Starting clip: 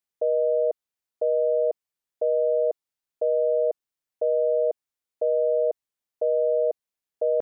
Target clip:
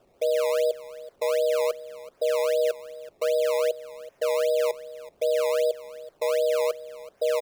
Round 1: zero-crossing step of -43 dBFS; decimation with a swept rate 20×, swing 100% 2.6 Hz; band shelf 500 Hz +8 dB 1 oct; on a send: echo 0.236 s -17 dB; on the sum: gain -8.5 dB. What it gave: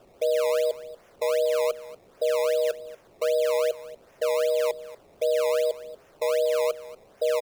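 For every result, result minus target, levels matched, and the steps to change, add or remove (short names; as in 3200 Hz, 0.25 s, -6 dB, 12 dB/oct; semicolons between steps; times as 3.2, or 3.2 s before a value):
echo 0.141 s early; zero-crossing step: distortion +6 dB
change: echo 0.377 s -17 dB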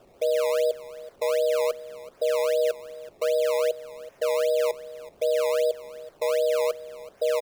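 zero-crossing step: distortion +6 dB
change: zero-crossing step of -49.5 dBFS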